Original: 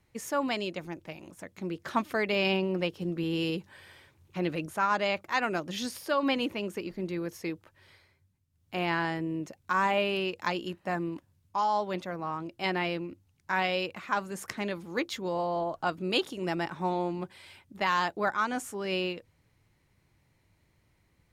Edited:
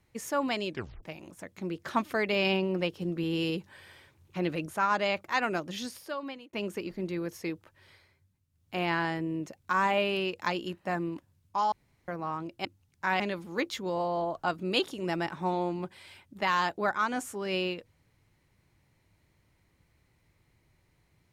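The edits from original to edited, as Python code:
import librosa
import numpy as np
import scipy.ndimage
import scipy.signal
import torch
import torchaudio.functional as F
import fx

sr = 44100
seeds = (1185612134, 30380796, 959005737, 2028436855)

y = fx.edit(x, sr, fx.tape_stop(start_s=0.69, length_s=0.34),
    fx.fade_out_span(start_s=5.54, length_s=0.99),
    fx.room_tone_fill(start_s=11.72, length_s=0.36),
    fx.cut(start_s=12.65, length_s=0.46),
    fx.cut(start_s=13.66, length_s=0.93), tone=tone)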